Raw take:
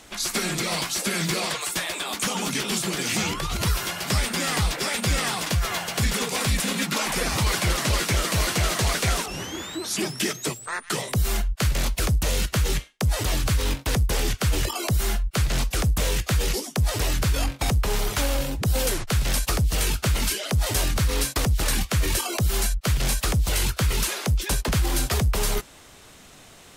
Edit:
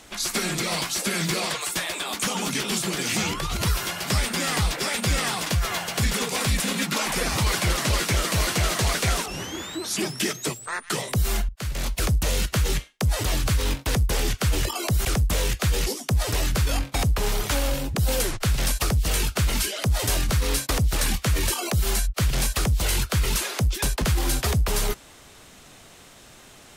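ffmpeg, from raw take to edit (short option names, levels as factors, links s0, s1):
-filter_complex "[0:a]asplit=3[s0][s1][s2];[s0]atrim=end=11.49,asetpts=PTS-STARTPTS,afade=t=out:st=11.486:d=0.004:c=hsin:silence=0.177828[s3];[s1]atrim=start=11.49:end=15.052,asetpts=PTS-STARTPTS,afade=t=in:d=0.55:silence=0.177828[s4];[s2]atrim=start=15.718[s5];[s3][s4]concat=n=2:v=0:a=1[s6];[s6][s5]acrossfade=d=0.004:c1=hsin:c2=hsin"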